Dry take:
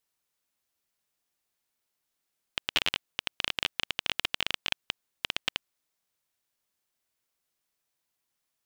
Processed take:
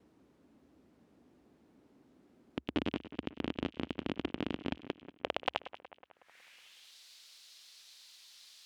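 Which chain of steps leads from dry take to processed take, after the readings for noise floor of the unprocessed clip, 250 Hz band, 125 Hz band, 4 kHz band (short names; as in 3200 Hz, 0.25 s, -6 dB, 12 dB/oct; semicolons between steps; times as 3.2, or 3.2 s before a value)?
-83 dBFS, +13.0 dB, +6.0 dB, -14.5 dB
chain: in parallel at 0 dB: upward compressor, threshold -30 dBFS; on the sum: expander -53 dBFS; low shelf 490 Hz +5 dB; band-pass sweep 270 Hz -> 4100 Hz, 4.68–6.97; bell 68 Hz +10 dB 0.64 oct; on a send: split-band echo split 2500 Hz, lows 0.184 s, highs 96 ms, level -14 dB; on the sum: gain +5.5 dB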